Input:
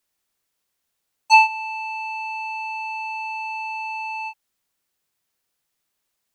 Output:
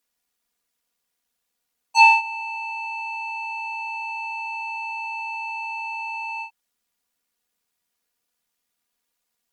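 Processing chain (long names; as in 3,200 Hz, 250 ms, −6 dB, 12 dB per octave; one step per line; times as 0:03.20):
time stretch by overlap-add 1.5×, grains 25 ms
harmonic generator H 4 −39 dB, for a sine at −3 dBFS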